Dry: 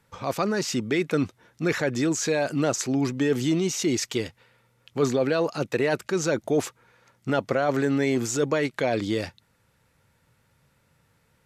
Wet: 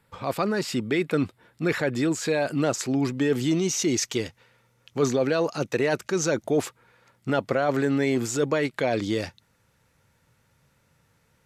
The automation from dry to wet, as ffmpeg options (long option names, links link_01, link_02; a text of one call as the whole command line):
ffmpeg -i in.wav -af "asetnsamples=nb_out_samples=441:pad=0,asendcmd='2.6 equalizer g -5.5;3.51 equalizer g 5;6.44 equalizer g -4.5;8.9 equalizer g 4',equalizer=frequency=6100:width_type=o:width=0.25:gain=-12" out.wav